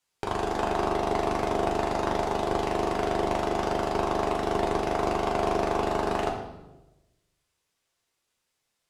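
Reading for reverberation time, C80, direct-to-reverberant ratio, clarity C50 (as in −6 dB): 1.0 s, 8.0 dB, −1.0 dB, 5.5 dB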